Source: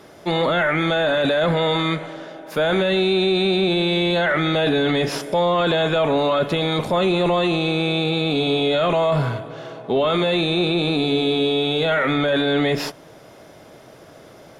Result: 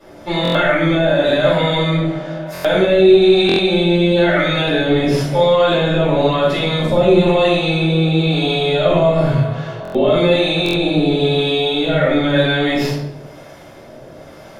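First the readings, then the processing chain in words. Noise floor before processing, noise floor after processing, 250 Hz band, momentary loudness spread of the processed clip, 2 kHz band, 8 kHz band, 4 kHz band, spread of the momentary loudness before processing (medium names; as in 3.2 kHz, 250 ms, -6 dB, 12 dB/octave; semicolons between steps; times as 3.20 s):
-45 dBFS, -38 dBFS, +5.0 dB, 7 LU, +3.0 dB, no reading, +3.0 dB, 5 LU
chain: dynamic bell 1.2 kHz, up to -4 dB, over -32 dBFS, Q 0.72; harmonic tremolo 1 Hz, depth 50%, crossover 650 Hz; simulated room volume 200 m³, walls mixed, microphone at 5.4 m; buffer glitch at 0.43/2.53/3.47/9.83/10.64 s, samples 1024, times 4; trim -7.5 dB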